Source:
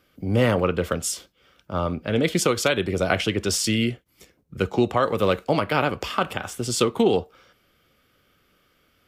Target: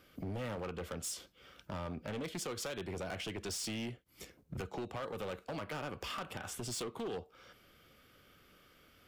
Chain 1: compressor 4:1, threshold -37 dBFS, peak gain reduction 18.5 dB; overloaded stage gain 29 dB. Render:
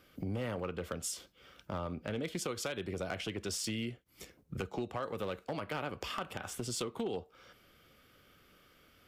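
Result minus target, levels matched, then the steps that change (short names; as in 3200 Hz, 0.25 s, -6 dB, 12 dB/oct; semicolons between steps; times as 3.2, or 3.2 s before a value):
overloaded stage: distortion -10 dB
change: overloaded stage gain 36 dB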